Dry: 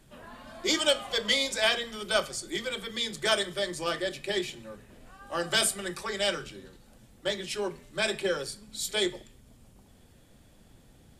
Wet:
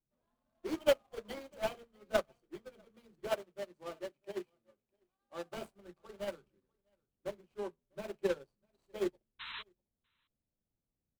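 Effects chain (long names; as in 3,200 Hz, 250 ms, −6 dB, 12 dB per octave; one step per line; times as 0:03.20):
running median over 25 samples
0:03.27–0:05.57: low-shelf EQ 130 Hz −10.5 dB
0:09.39–0:09.63: sound drawn into the spectrogram noise 880–4,100 Hz −33 dBFS
single-tap delay 648 ms −15 dB
expander for the loud parts 2.5 to 1, over −47 dBFS
level +2 dB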